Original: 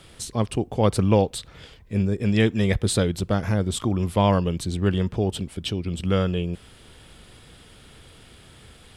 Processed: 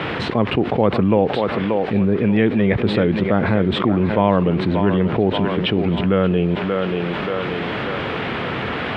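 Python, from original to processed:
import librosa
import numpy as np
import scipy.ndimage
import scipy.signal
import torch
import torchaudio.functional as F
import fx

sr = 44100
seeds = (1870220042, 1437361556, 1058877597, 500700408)

p1 = fx.peak_eq(x, sr, hz=2200.0, db=3.0, octaves=0.77)
p2 = fx.quant_dither(p1, sr, seeds[0], bits=6, dither='triangular')
p3 = p1 + (p2 * librosa.db_to_amplitude(-6.0))
p4 = fx.bandpass_edges(p3, sr, low_hz=170.0, high_hz=3400.0)
p5 = fx.air_absorb(p4, sr, metres=470.0)
p6 = p5 + fx.echo_thinned(p5, sr, ms=582, feedback_pct=45, hz=290.0, wet_db=-11, dry=0)
y = fx.env_flatten(p6, sr, amount_pct=70)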